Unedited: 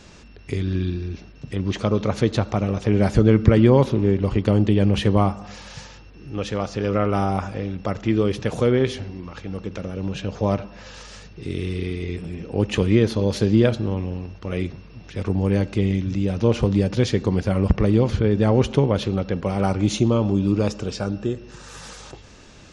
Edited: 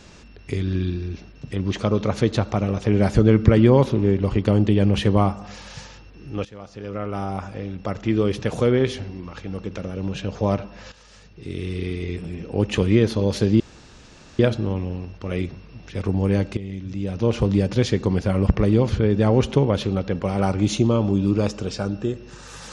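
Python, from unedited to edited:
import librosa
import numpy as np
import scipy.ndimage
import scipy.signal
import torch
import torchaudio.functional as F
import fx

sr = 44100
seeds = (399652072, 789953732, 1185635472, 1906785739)

y = fx.edit(x, sr, fx.fade_in_from(start_s=6.45, length_s=1.84, floor_db=-17.5),
    fx.fade_in_from(start_s=10.92, length_s=0.99, floor_db=-12.5),
    fx.insert_room_tone(at_s=13.6, length_s=0.79),
    fx.fade_in_from(start_s=15.78, length_s=0.92, floor_db=-15.0), tone=tone)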